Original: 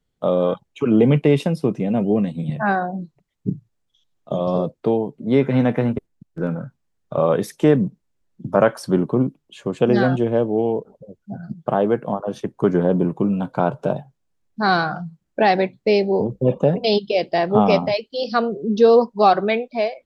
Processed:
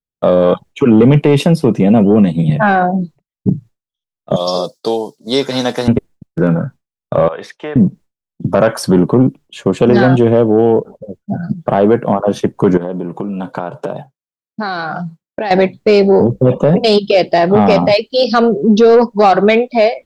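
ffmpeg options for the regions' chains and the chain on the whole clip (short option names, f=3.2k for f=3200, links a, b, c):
-filter_complex "[0:a]asettb=1/sr,asplit=3[a][b][c];[a]atrim=end=4.364[d];[b]atrim=start=4.36:end=5.88,asetpts=PTS-STARTPTS,afade=t=in:d=0.004:c=qsin,afade=t=out:st=1.516:d=0.004:c=qsin,highpass=f=1.2k:p=1,highshelf=f=3.4k:t=q:w=3:g=13[e];[c]atrim=start=5.876[f];[d][e]acrossfade=d=0.004:c1=hsin:c2=qsin[g];[g][f]acrossfade=d=0.004:c1=qsin:c2=hsin,asettb=1/sr,asplit=3[h][i][j];[h]atrim=end=7.284[k];[i]atrim=start=7.28:end=7.76,asetpts=PTS-STARTPTS,afade=t=in:d=0.004:c=qsin,afade=t=out:st=0.476:d=0.004:c=qsin,lowpass=6.4k,acrossover=split=580 3900:gain=0.1 1 0.158[l][m][n];[l][m][n]amix=inputs=3:normalize=0,acompressor=threshold=-36dB:ratio=3:attack=3.2:release=140:knee=1:detection=peak[o];[j]atrim=start=7.756[p];[k][o]acrossfade=d=0.004:c1=hsin:c2=qsin[q];[q][p]acrossfade=d=0.004:c1=qsin:c2=hsin,asettb=1/sr,asplit=3[r][s][t];[r]atrim=end=12.774[u];[s]atrim=start=12.77:end=15.51,asetpts=PTS-STARTPTS,afade=t=in:d=0.004:c=qsin,afade=t=out:st=2.736:d=0.004:c=qsin,acompressor=threshold=-26dB:ratio=16:attack=3.2:release=140:knee=1:detection=peak,highpass=f=240:p=1[v];[t]atrim=start=15.506[w];[u][v]acrossfade=d=0.004:c1=hsin:c2=qsin[x];[x][w]acrossfade=d=0.004:c1=qsin:c2=hsin,agate=range=-33dB:threshold=-39dB:ratio=3:detection=peak,acontrast=68,alimiter=level_in=7dB:limit=-1dB:release=50:level=0:latency=1,volume=-1dB"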